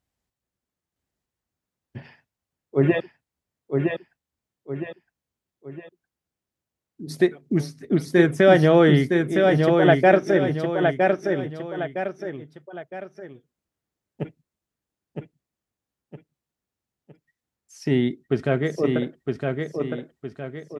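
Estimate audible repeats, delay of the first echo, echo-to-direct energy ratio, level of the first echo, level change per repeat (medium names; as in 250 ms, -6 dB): 3, 962 ms, -3.5 dB, -4.0 dB, -8.0 dB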